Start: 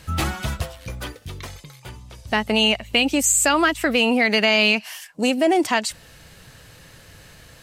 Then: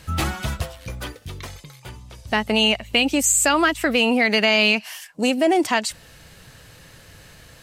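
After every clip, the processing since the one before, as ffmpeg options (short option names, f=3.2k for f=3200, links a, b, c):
-af anull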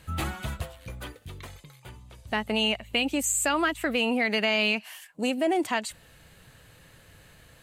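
-af "equalizer=f=5.4k:t=o:w=0.46:g=-8.5,volume=-7dB"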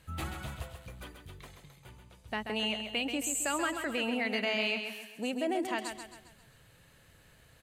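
-af "aecho=1:1:134|268|402|536|670:0.447|0.205|0.0945|0.0435|0.02,volume=-7.5dB"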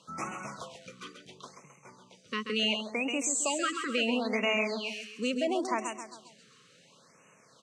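-af "highpass=f=190:w=0.5412,highpass=f=190:w=1.3066,equalizer=f=320:t=q:w=4:g=-6,equalizer=f=770:t=q:w=4:g=-5,equalizer=f=1.1k:t=q:w=4:g=7,equalizer=f=1.7k:t=q:w=4:g=-9,equalizer=f=5.7k:t=q:w=4:g=8,lowpass=f=7.7k:w=0.5412,lowpass=f=7.7k:w=1.3066,afftfilt=real='re*(1-between(b*sr/1024,720*pow(4200/720,0.5+0.5*sin(2*PI*0.72*pts/sr))/1.41,720*pow(4200/720,0.5+0.5*sin(2*PI*0.72*pts/sr))*1.41))':imag='im*(1-between(b*sr/1024,720*pow(4200/720,0.5+0.5*sin(2*PI*0.72*pts/sr))/1.41,720*pow(4200/720,0.5+0.5*sin(2*PI*0.72*pts/sr))*1.41))':win_size=1024:overlap=0.75,volume=5dB"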